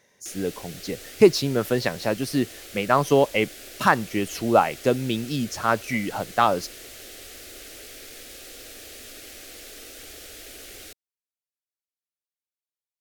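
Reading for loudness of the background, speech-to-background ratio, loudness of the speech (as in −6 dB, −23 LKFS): −40.0 LKFS, 16.5 dB, −23.5 LKFS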